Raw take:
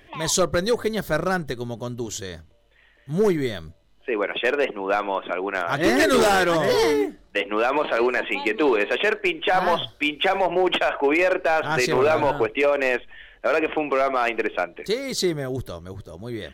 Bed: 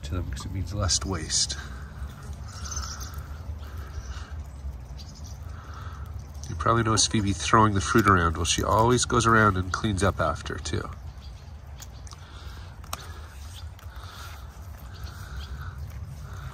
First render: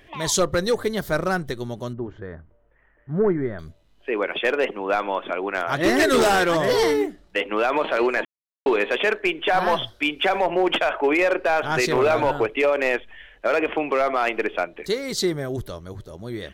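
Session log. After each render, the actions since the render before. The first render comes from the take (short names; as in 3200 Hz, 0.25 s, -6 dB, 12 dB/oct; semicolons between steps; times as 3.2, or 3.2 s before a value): 1.93–3.59 Chebyshev low-pass 1600 Hz, order 3; 8.25–8.66 mute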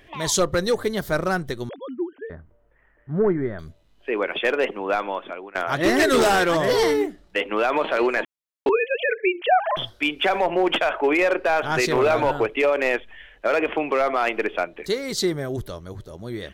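1.69–2.3 sine-wave speech; 4.71–5.55 fade out equal-power, to -20 dB; 8.69–9.77 sine-wave speech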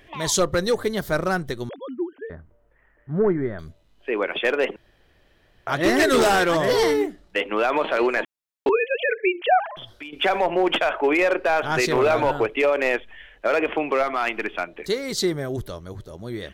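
4.76–5.67 room tone; 9.66–10.13 compressor 5:1, threshold -35 dBFS; 14.03–14.68 bell 510 Hz -9 dB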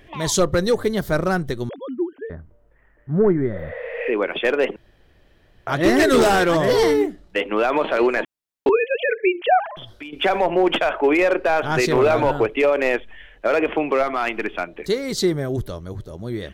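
3.56–4.07 spectral repair 460–11000 Hz both; low shelf 480 Hz +5.5 dB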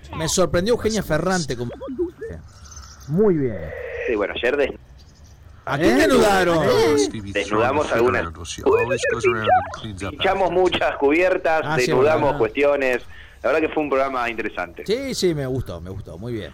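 add bed -6.5 dB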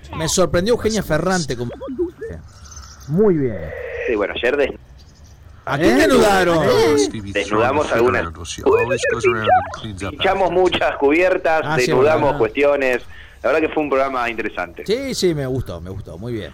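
gain +2.5 dB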